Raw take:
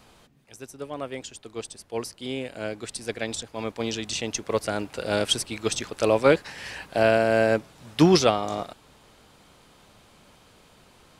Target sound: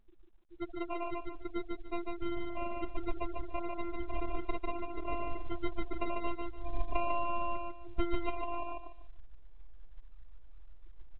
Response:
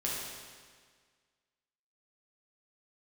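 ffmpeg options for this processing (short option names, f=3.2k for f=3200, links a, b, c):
-filter_complex "[0:a]aeval=exprs='if(lt(val(0),0),0.708*val(0),val(0))':c=same,lowpass=f=2k:p=1,acrusher=samples=26:mix=1:aa=0.000001,asplit=3[a][b][c];[a]afade=t=out:st=2.35:d=0.02[d];[b]adynamicequalizer=threshold=0.00355:dfrequency=1000:dqfactor=2.1:tfrequency=1000:tqfactor=2.1:attack=5:release=100:ratio=0.375:range=1.5:mode=cutabove:tftype=bell,afade=t=in:st=2.35:d=0.02,afade=t=out:st=3.2:d=0.02[e];[c]afade=t=in:st=3.2:d=0.02[f];[d][e][f]amix=inputs=3:normalize=0,acompressor=threshold=-36dB:ratio=12,asubboost=boost=5:cutoff=61,afftfilt=real='hypot(re,im)*cos(PI*b)':imag='0':win_size=512:overlap=0.75,afftfilt=real='re*gte(hypot(re,im),0.00891)':imag='im*gte(hypot(re,im),0.00891)':win_size=1024:overlap=0.75,asplit=2[g][h];[h]aecho=0:1:147|294|441:0.708|0.17|0.0408[i];[g][i]amix=inputs=2:normalize=0,volume=7.5dB" -ar 8000 -c:a pcm_mulaw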